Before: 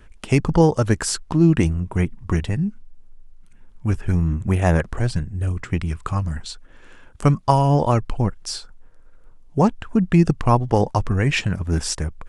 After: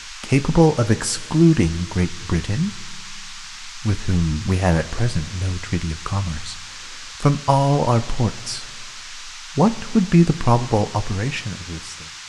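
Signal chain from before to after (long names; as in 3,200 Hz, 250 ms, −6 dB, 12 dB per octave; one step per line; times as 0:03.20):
fade-out on the ending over 1.77 s
coupled-rooms reverb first 0.22 s, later 2.3 s, from −19 dB, DRR 9 dB
noise in a band 960–6,800 Hz −37 dBFS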